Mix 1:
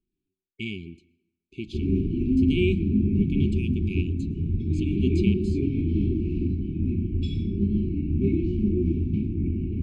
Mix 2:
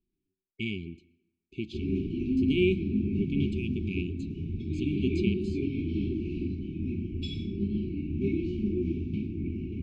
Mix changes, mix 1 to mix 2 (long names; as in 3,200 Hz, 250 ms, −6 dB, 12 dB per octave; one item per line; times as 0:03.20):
background: add spectral tilt +2.5 dB per octave
master: add high-frequency loss of the air 66 metres